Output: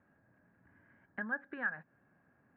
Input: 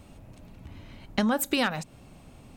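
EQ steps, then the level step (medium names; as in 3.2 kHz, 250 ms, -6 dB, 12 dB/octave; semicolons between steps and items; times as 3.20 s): high-pass 140 Hz 12 dB/octave; four-pole ladder low-pass 1.7 kHz, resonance 90%; distance through air 330 m; -5.0 dB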